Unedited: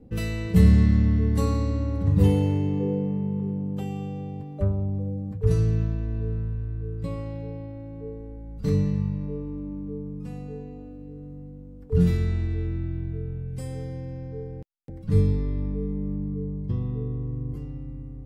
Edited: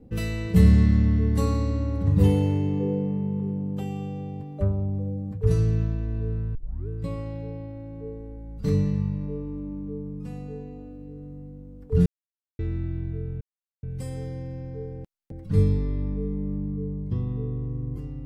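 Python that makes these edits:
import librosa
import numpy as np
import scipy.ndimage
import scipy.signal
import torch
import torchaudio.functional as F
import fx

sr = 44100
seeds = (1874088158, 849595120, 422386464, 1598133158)

y = fx.edit(x, sr, fx.tape_start(start_s=6.55, length_s=0.33),
    fx.silence(start_s=12.06, length_s=0.53),
    fx.insert_silence(at_s=13.41, length_s=0.42), tone=tone)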